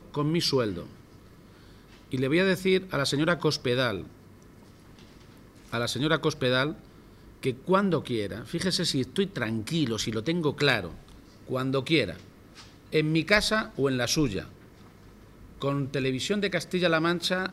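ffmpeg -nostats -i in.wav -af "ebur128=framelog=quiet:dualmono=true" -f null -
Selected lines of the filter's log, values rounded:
Integrated loudness:
  I:         -23.9 LUFS
  Threshold: -35.3 LUFS
Loudness range:
  LRA:         3.0 LU
  Threshold: -45.3 LUFS
  LRA low:   -27.1 LUFS
  LRA high:  -24.1 LUFS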